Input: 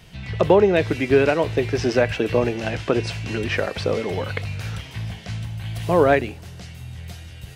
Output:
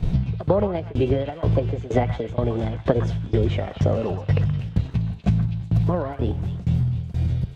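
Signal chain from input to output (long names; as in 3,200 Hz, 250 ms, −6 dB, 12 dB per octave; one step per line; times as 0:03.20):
in parallel at −2 dB: output level in coarse steps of 17 dB
on the sum: spectral tilt −4.5 dB per octave
formants moved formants +4 semitones
downward compressor 16 to 1, threshold −22 dBFS, peak gain reduction 22 dB
noise gate −31 dBFS, range −10 dB
shaped tremolo saw down 2.1 Hz, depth 95%
on a send: echo through a band-pass that steps 123 ms, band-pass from 1,300 Hz, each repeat 1.4 octaves, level −4.5 dB
on the sum: level +8 dB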